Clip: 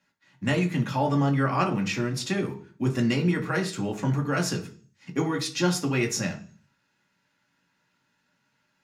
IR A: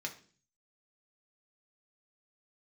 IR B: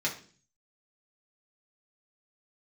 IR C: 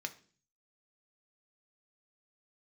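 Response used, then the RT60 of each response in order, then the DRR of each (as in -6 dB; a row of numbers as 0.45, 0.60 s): A; 0.45, 0.45, 0.45 s; 0.5, -4.5, 5.5 dB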